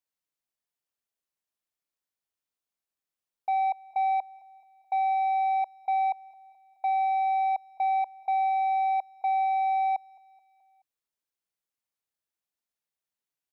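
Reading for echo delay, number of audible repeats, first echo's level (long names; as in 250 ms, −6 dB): 214 ms, 3, −24.0 dB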